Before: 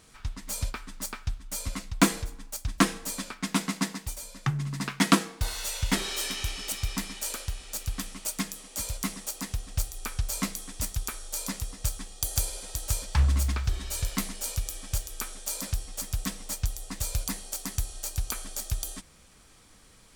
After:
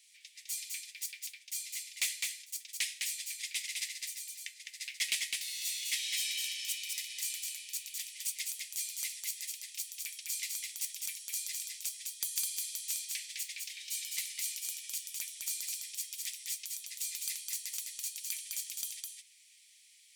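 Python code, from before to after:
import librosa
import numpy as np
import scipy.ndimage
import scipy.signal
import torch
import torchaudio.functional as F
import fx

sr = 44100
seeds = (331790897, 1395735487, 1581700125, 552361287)

y = scipy.signal.sosfilt(scipy.signal.butter(12, 2000.0, 'highpass', fs=sr, output='sos'), x)
y = 10.0 ** (-18.0 / 20.0) * np.tanh(y / 10.0 ** (-18.0 / 20.0))
y = y + 10.0 ** (-3.5 / 20.0) * np.pad(y, (int(207 * sr / 1000.0), 0))[:len(y)]
y = y * librosa.db_to_amplitude(-3.0)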